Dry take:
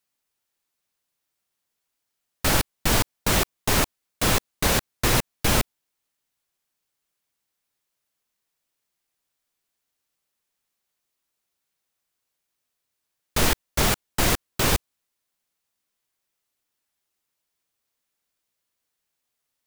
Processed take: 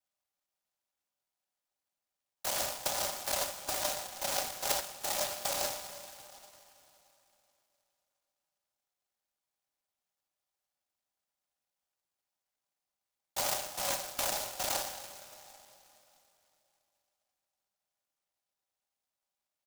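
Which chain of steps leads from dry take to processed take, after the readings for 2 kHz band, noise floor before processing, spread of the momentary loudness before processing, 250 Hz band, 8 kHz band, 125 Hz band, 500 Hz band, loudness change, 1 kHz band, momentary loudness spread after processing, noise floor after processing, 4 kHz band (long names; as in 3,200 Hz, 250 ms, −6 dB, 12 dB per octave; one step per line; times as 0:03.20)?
−14.0 dB, −81 dBFS, 3 LU, −23.0 dB, −7.0 dB, −27.0 dB, −9.5 dB, −10.0 dB, −9.0 dB, 14 LU, below −85 dBFS, −9.5 dB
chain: comb filter 4.6 ms, depth 99%
output level in coarse steps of 17 dB
coupled-rooms reverb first 0.67 s, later 3.3 s, from −15 dB, DRR 11 dB
single-sideband voice off tune +350 Hz 240–3,500 Hz
high-shelf EQ 3,000 Hz −8 dB
notch filter 1,100 Hz, Q 5.7
compressor whose output falls as the input rises −32 dBFS, ratio −1
short delay modulated by noise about 5,500 Hz, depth 0.18 ms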